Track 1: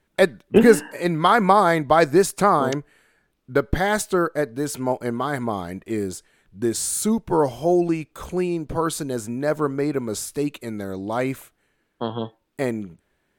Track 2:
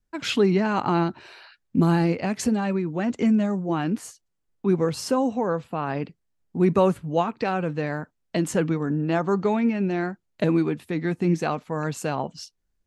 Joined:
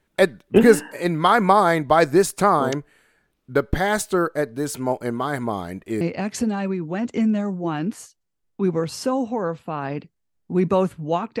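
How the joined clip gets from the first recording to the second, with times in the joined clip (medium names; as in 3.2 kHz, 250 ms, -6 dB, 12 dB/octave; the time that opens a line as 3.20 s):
track 1
6.01 s: go over to track 2 from 2.06 s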